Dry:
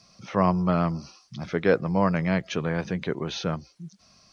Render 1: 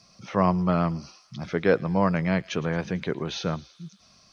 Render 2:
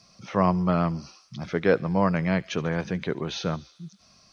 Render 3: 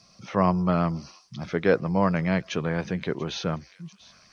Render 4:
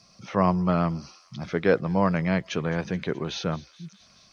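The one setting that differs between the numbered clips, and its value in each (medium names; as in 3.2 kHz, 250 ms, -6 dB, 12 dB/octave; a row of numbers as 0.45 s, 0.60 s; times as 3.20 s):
feedback echo behind a high-pass, time: 111 ms, 72 ms, 689 ms, 213 ms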